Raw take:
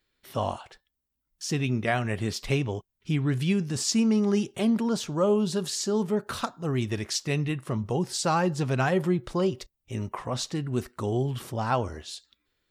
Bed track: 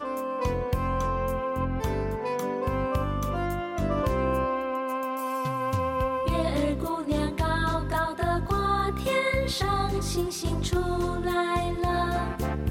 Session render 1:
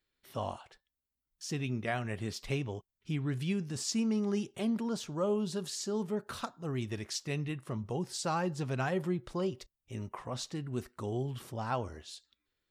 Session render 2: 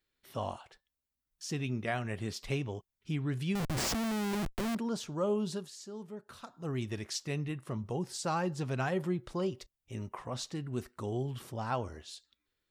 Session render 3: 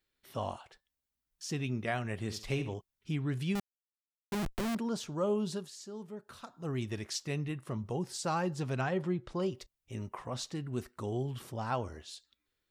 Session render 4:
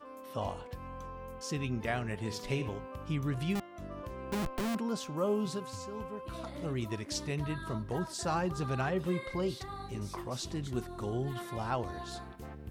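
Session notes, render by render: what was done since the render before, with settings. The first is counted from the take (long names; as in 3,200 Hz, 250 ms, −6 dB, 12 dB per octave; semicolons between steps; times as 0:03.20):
level −8 dB
0:03.55–0:04.75: comparator with hysteresis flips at −38.5 dBFS; 0:05.53–0:06.59: duck −10 dB, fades 0.15 s; 0:07.30–0:08.28: dynamic equaliser 3,600 Hz, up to −3 dB, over −50 dBFS, Q 0.84
0:02.23–0:02.74: flutter between parallel walls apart 11.5 metres, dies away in 0.36 s; 0:03.60–0:04.32: silence; 0:08.81–0:09.40: high-frequency loss of the air 69 metres
mix in bed track −17 dB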